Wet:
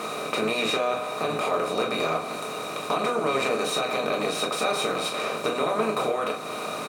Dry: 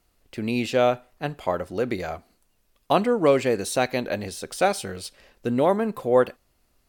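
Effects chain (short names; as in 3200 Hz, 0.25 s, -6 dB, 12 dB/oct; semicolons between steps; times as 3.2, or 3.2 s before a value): per-bin compression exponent 0.4; HPF 180 Hz 12 dB/oct; notches 60/120/180/240/300/360 Hz; comb 6.4 ms, depth 31%; limiter -8.5 dBFS, peak gain reduction 8 dB; compressor 2.5:1, threshold -29 dBFS, peak gain reduction 10.5 dB; harmoniser -5 st -11 dB; small resonant body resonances 1200/2400/3800 Hz, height 15 dB, ringing for 30 ms; reverb, pre-delay 4 ms, DRR 0.5 dB; gain -2 dB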